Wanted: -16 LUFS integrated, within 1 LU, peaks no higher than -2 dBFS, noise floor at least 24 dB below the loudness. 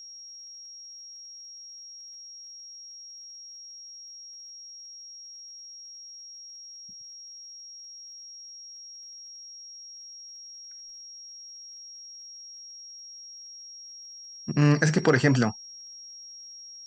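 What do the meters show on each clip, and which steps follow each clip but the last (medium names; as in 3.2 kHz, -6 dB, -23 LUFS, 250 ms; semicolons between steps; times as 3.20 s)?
tick rate 36 per s; steady tone 5.6 kHz; tone level -42 dBFS; loudness -33.5 LUFS; peak level -7.0 dBFS; loudness target -16.0 LUFS
-> de-click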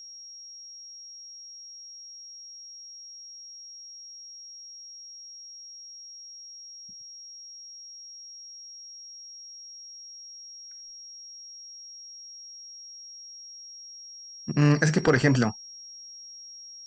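tick rate 0.059 per s; steady tone 5.6 kHz; tone level -42 dBFS
-> band-stop 5.6 kHz, Q 30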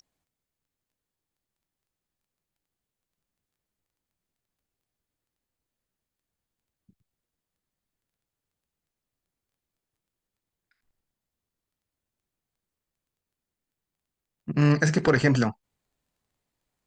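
steady tone not found; loudness -23.0 LUFS; peak level -7.0 dBFS; loudness target -16.0 LUFS
-> trim +7 dB; peak limiter -2 dBFS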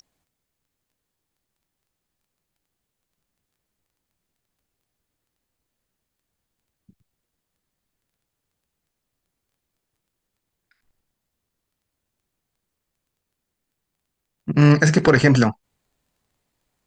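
loudness -16.5 LUFS; peak level -2.0 dBFS; noise floor -81 dBFS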